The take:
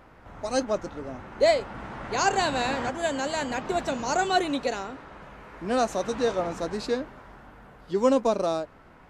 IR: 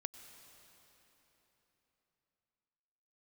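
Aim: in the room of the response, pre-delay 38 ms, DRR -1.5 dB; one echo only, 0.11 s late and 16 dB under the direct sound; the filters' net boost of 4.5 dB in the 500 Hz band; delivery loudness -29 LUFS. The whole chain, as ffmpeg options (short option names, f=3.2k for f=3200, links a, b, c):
-filter_complex "[0:a]equalizer=f=500:t=o:g=5.5,aecho=1:1:110:0.158,asplit=2[a][b];[1:a]atrim=start_sample=2205,adelay=38[c];[b][c]afir=irnorm=-1:irlink=0,volume=4dB[d];[a][d]amix=inputs=2:normalize=0,volume=-8.5dB"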